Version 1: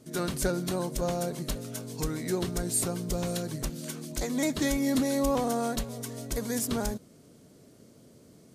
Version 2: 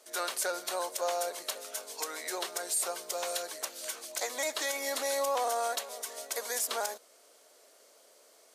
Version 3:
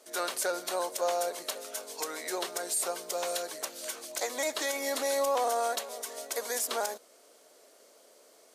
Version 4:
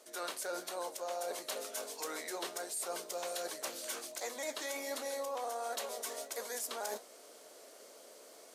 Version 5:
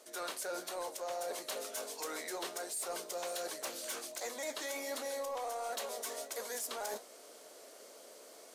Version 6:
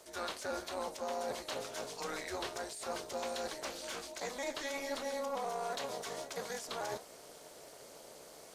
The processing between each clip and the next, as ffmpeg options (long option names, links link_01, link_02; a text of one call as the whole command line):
ffmpeg -i in.wav -af "highpass=frequency=580:width=0.5412,highpass=frequency=580:width=1.3066,alimiter=level_in=0.5dB:limit=-24dB:level=0:latency=1:release=44,volume=-0.5dB,volume=3.5dB" out.wav
ffmpeg -i in.wav -af "lowshelf=frequency=370:gain=9.5" out.wav
ffmpeg -i in.wav -af "areverse,acompressor=threshold=-41dB:ratio=5,areverse,flanger=delay=8.7:depth=9.8:regen=-67:speed=1.4:shape=triangular,volume=7.5dB" out.wav
ffmpeg -i in.wav -af "asoftclip=type=tanh:threshold=-31.5dB,volume=1dB" out.wav
ffmpeg -i in.wav -filter_complex "[0:a]acrossover=split=6400[link_01][link_02];[link_02]acompressor=threshold=-58dB:ratio=4:attack=1:release=60[link_03];[link_01][link_03]amix=inputs=2:normalize=0,tremolo=f=290:d=0.71,volume=4.5dB" out.wav